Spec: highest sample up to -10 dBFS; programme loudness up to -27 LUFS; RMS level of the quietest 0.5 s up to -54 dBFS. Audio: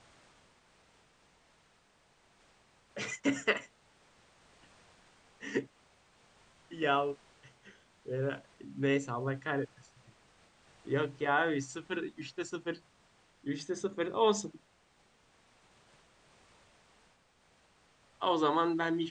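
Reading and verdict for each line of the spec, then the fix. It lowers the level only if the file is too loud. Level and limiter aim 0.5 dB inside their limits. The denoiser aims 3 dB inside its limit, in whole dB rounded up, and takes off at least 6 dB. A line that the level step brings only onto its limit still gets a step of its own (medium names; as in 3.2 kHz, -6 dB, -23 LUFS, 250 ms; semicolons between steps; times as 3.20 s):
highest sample -13.5 dBFS: pass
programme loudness -34.0 LUFS: pass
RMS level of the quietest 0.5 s -68 dBFS: pass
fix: none needed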